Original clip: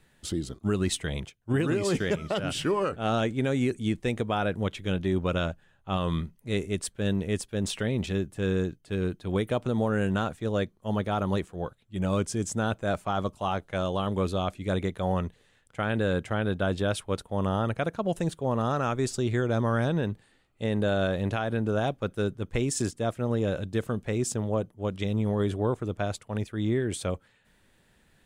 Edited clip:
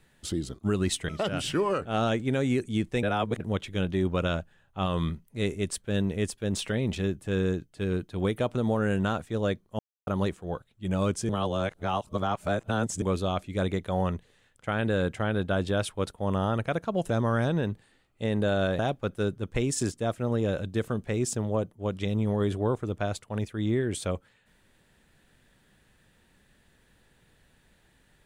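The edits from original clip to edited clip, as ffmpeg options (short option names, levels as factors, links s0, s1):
-filter_complex "[0:a]asplit=10[s0][s1][s2][s3][s4][s5][s6][s7][s8][s9];[s0]atrim=end=1.092[s10];[s1]atrim=start=2.198:end=4.142[s11];[s2]atrim=start=4.138:end=4.512,asetpts=PTS-STARTPTS,areverse[s12];[s3]atrim=start=4.508:end=10.9,asetpts=PTS-STARTPTS,afade=t=out:st=6.388:d=0.004:c=hsin[s13];[s4]atrim=start=10.9:end=11.18,asetpts=PTS-STARTPTS,volume=0[s14];[s5]atrim=start=11.18:end=12.402,asetpts=PTS-STARTPTS,afade=t=in:d=0.004:c=hsin[s15];[s6]atrim=start=12.398:end=14.132,asetpts=PTS-STARTPTS,areverse[s16];[s7]atrim=start=14.128:end=18.212[s17];[s8]atrim=start=19.498:end=21.192[s18];[s9]atrim=start=21.778[s19];[s10][s11]acrossfade=d=0.004:c1=hsin:c2=hsin[s20];[s20][s12]acrossfade=d=0.004:c1=hsin:c2=hsin[s21];[s13][s14][s15]concat=n=3:v=0:a=1[s22];[s21][s22]acrossfade=d=0.004:c1=hsin:c2=hsin[s23];[s23][s16]acrossfade=d=0.004:c1=hsin:c2=hsin[s24];[s24][s17]acrossfade=d=0.004:c1=hsin:c2=hsin[s25];[s25][s18]acrossfade=d=0.004:c1=hsin:c2=hsin[s26];[s26][s19]acrossfade=d=0.004:c1=hsin:c2=hsin"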